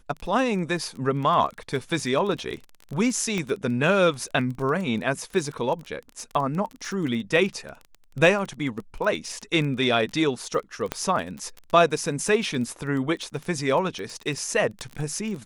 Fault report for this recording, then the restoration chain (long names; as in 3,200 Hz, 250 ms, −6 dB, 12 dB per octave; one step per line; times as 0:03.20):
surface crackle 22 per second −30 dBFS
0:03.38: click −15 dBFS
0:10.92: click −11 dBFS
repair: click removal